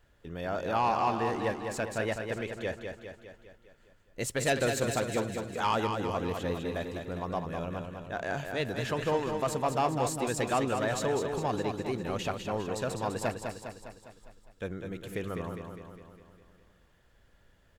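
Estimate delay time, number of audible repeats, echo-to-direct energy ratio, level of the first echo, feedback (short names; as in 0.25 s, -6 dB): 0.203 s, 6, -4.5 dB, -6.0 dB, 57%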